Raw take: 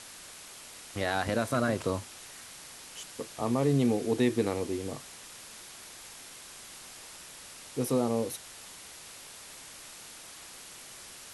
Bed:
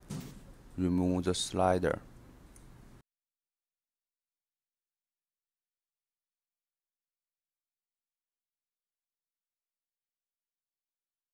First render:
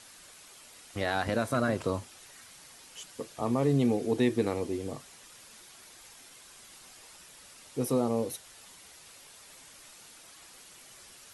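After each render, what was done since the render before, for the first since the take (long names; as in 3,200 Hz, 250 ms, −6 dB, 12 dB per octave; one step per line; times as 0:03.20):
broadband denoise 7 dB, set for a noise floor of −48 dBFS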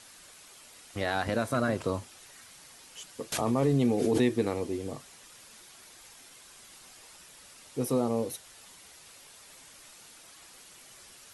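0:03.32–0:04.32: background raised ahead of every attack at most 29 dB per second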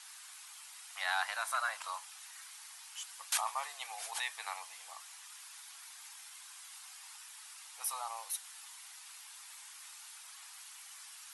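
dynamic equaliser 9,600 Hz, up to +4 dB, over −57 dBFS, Q 2.1
Butterworth high-pass 810 Hz 48 dB per octave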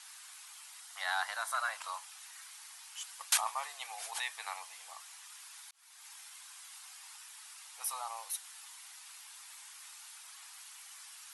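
0:00.80–0:01.58: parametric band 2,500 Hz −9 dB 0.24 octaves
0:03.00–0:03.48: transient designer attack +6 dB, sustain +1 dB
0:05.71–0:06.12: fade in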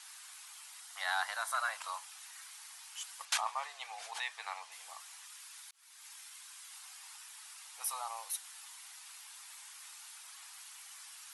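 0:03.25–0:04.72: high-frequency loss of the air 62 metres
0:05.26–0:06.71: Bessel high-pass filter 910 Hz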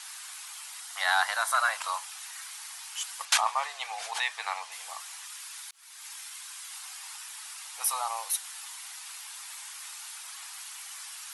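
level +9 dB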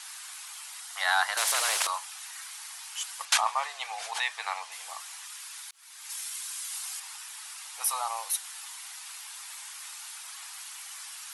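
0:01.37–0:01.87: every bin compressed towards the loudest bin 4 to 1
0:06.09–0:07.00: high-shelf EQ 4,500 Hz +8 dB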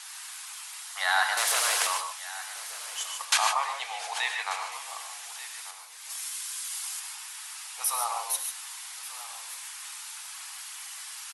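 single-tap delay 1,188 ms −16.5 dB
reverb whose tail is shaped and stops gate 170 ms rising, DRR 3.5 dB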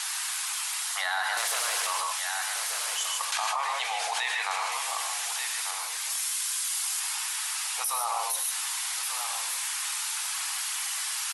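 brickwall limiter −20.5 dBFS, peak gain reduction 10.5 dB
envelope flattener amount 70%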